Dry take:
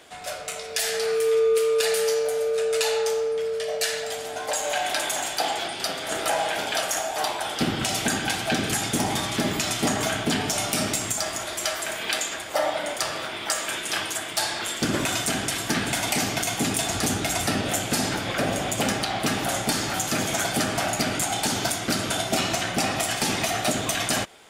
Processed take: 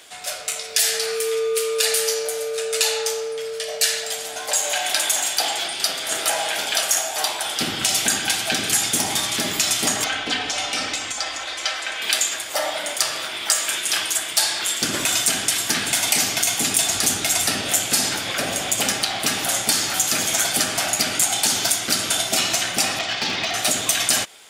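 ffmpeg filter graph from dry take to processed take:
-filter_complex "[0:a]asettb=1/sr,asplit=3[s0][s1][s2];[s0]atrim=end=10.044[s3];[s1]atrim=start=10.04:end=12.02,asetpts=PTS-STARTPTS,afade=t=in:d=0.004:c=qsin,afade=t=out:st=1.976:d=0.004:c=qsin,lowpass=4000,equalizer=f=210:t=o:w=0.63:g=-11.5,aecho=1:1:3.9:0.56,atrim=end_sample=87318[s4];[s2]atrim=start=12.016[s5];[s3][s4]acrossfade=d=0.004:c1=hsin:c2=qsin[s6];[s6][s5]acrossfade=d=0.004:c1=qsin:c2=hsin,asettb=1/sr,asplit=3[s7][s8][s9];[s7]atrim=end=22.994[s10];[s8]atrim=start=22.99:end=23.54,asetpts=PTS-STARTPTS,afade=t=in:d=0.004:c=qsin,afade=t=out:st=0.546:d=0.004:c=qsin,lowpass=f=4700:w=0.5412,lowpass=f=4700:w=1.3066,asoftclip=type=hard:threshold=0.112[s11];[s9]atrim=start=23.536[s12];[s10][s11]acrossfade=d=0.004:c1=hsin:c2=qsin[s13];[s13][s12]acrossfade=d=0.004:c1=qsin:c2=hsin,lowshelf=f=230:g=-5,acontrast=26,highshelf=f=2100:g=11.5,volume=0.447"

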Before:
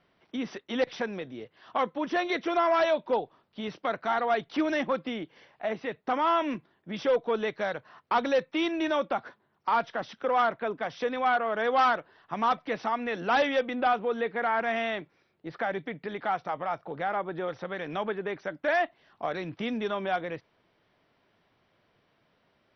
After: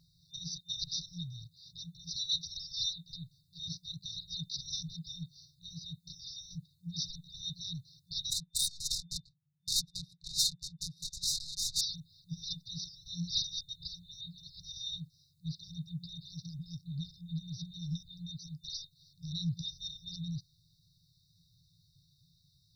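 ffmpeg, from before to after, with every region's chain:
-filter_complex "[0:a]asettb=1/sr,asplit=3[s0][s1][s2];[s0]atrim=end=8.304[s3];[s1]atrim=start=8.3:end=11.81,asetpts=PTS-STARTPTS,afade=t=in:d=0.004:c=qsin,afade=t=out:st=3.506:d=0.004:c=qsin,aemphasis=mode=production:type=riaa,aecho=1:1:6.5:0.6,atrim=end_sample=154791,adynamicsmooth=sensitivity=2.5:basefreq=520[s4];[s2]atrim=start=11.806[s5];[s3][s4]acrossfade=d=0.004:c1=hsin:c2=qsin[s6];[s6][s5]acrossfade=d=0.004:c1=qsin:c2=hsin,afftfilt=real='re*(1-between(b*sr/4096,180,3600))':imag='im*(1-between(b*sr/4096,180,3600))':win_size=4096:overlap=0.75,highshelf=f=4200:g=5,volume=2.82"

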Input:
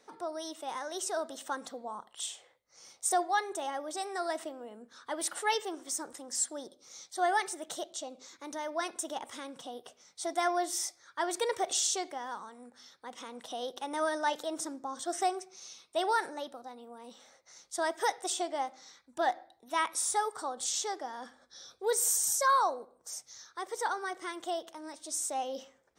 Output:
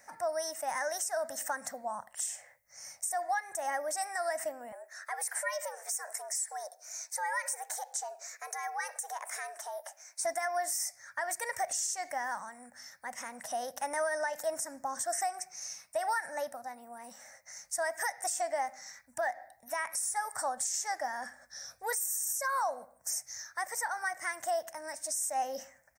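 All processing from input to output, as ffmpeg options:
-filter_complex "[0:a]asettb=1/sr,asplit=3[s0][s1][s2];[s0]atrim=end=4.724[s3];[s1]atrim=start=4.72:end=10.25,asetpts=PTS-STARTPTS,afade=t=in:d=0.004:c=qsin,afade=t=out:st=5.526:d=0.004:c=qsin,acompressor=threshold=0.0112:ratio=2.5:attack=3.2:release=140:knee=1:detection=peak,afreqshift=160,highpass=f=340:w=0.5412,highpass=f=340:w=1.3066[s4];[s2]atrim=start=10.246[s5];[s3][s4]acrossfade=d=0.004:c1=hsin:c2=qsin[s6];[s6][s5]acrossfade=d=0.004:c1=qsin:c2=hsin,firequalizer=gain_entry='entry(110,0);entry(270,-12);entry(390,-26);entry(590,0);entry(1200,-8);entry(1800,6);entry(3400,-21);entry(5400,0);entry(14000,10)':delay=0.05:min_phase=1,acompressor=threshold=0.0251:ratio=6,alimiter=level_in=2.11:limit=0.0631:level=0:latency=1:release=164,volume=0.473,volume=2.24"

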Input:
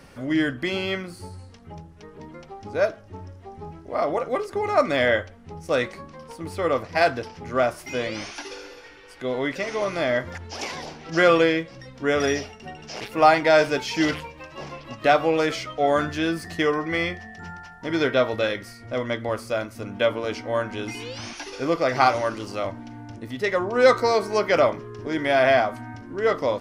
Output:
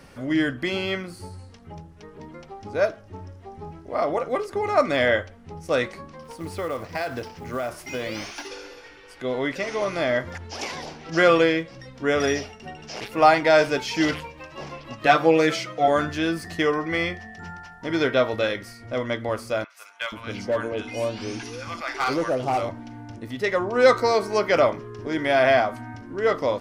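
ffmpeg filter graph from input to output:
-filter_complex "[0:a]asettb=1/sr,asplit=3[s0][s1][s2];[s0]atrim=end=6.244[s3];[s1]atrim=start=6.24:end=8.47,asetpts=PTS-STARTPTS,afade=t=in:d=0.004:c=qsin,afade=t=out:st=2.226:d=0.004:c=qsin,acompressor=threshold=0.0631:ratio=6:attack=3.2:release=140:knee=1:detection=peak,acrusher=bits=6:mode=log:mix=0:aa=0.000001[s4];[s2]atrim=start=8.466[s5];[s3][s4]acrossfade=d=0.004:c1=hsin:c2=qsin[s6];[s6][s5]acrossfade=d=0.004:c1=qsin:c2=hsin,asettb=1/sr,asplit=3[s7][s8][s9];[s7]atrim=end=15.064[s10];[s8]atrim=start=15.06:end=15.88,asetpts=PTS-STARTPTS,afade=t=in:d=0.004:c=qsin,afade=t=out:st=0.816:d=0.004:c=qsin,highpass=110,aecho=1:1:5.9:0.83,atrim=end_sample=36162[s11];[s9]atrim=start=15.876[s12];[s10][s11]acrossfade=d=0.004:c1=hsin:c2=qsin[s13];[s13][s12]acrossfade=d=0.004:c1=qsin:c2=hsin,asettb=1/sr,asplit=3[s14][s15][s16];[s14]atrim=end=19.644[s17];[s15]atrim=start=19.64:end=22.69,asetpts=PTS-STARTPTS,afade=t=in:d=0.004:c=qsin,afade=t=out:st=3.046:d=0.004:c=qsin,bandreject=f=1900:w=27,acrossover=split=930|4100[s18][s19][s20];[s20]adelay=60[s21];[s18]adelay=480[s22];[s22][s19][s21]amix=inputs=3:normalize=0,atrim=end_sample=134505,volume=7.94,asoftclip=hard,volume=0.126[s23];[s16]atrim=start=22.686[s24];[s17][s23]acrossfade=d=0.004:c1=hsin:c2=qsin[s25];[s25][s24]acrossfade=d=0.004:c1=qsin:c2=hsin"

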